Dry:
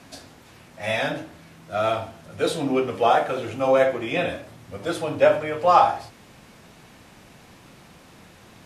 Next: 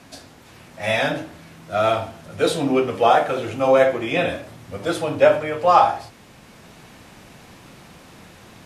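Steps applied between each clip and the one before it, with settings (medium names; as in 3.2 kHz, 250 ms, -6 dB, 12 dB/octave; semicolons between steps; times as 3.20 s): level rider gain up to 3 dB; trim +1 dB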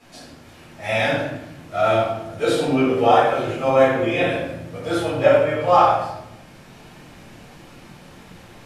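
simulated room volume 270 m³, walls mixed, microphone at 4 m; trim -11 dB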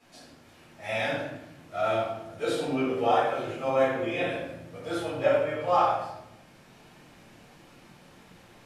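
bass shelf 120 Hz -6 dB; trim -8.5 dB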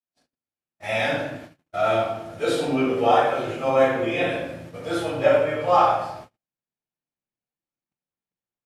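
gate -45 dBFS, range -50 dB; trim +5.5 dB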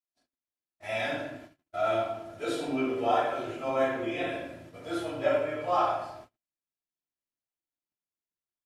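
comb 3 ms, depth 41%; trim -8.5 dB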